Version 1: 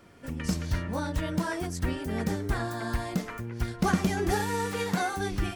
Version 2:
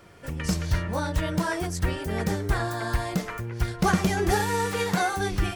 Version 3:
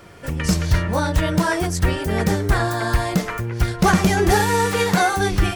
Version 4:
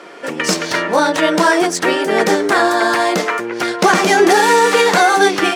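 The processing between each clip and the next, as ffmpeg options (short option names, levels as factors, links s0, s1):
-af "equalizer=f=250:t=o:w=0.35:g=-11.5,volume=1.68"
-af "volume=6.31,asoftclip=hard,volume=0.158,volume=2.37"
-af "highpass=f=280:w=0.5412,highpass=f=280:w=1.3066,adynamicsmooth=sensitivity=3.5:basefreq=7000,alimiter=level_in=3.55:limit=0.891:release=50:level=0:latency=1,volume=0.891"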